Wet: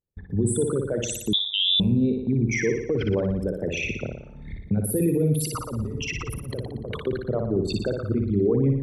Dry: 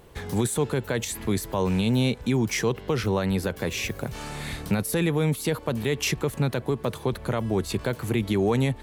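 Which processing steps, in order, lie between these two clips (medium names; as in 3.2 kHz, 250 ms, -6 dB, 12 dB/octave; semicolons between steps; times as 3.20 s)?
resonances exaggerated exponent 3; gate -33 dBFS, range -40 dB; 5.39–7.07 s: compressor with a negative ratio -30 dBFS, ratio -0.5; on a send: flutter echo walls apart 10.1 m, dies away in 0.73 s; 1.33–1.80 s: on the sum: frequency inversion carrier 3.7 kHz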